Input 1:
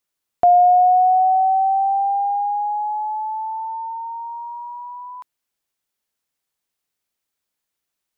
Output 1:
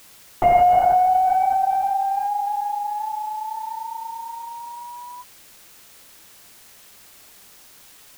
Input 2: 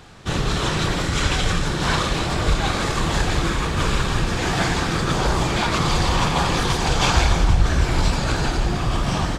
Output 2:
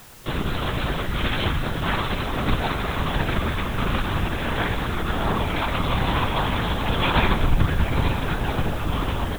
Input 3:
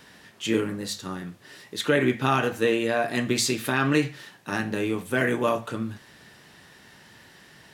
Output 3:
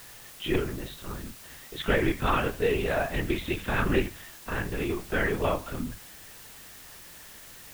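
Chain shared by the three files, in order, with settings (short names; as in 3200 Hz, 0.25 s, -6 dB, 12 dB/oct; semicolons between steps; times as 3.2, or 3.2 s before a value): added harmonics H 3 -20 dB, 6 -41 dB, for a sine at -4 dBFS; LPC vocoder at 8 kHz whisper; requantised 8-bit, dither triangular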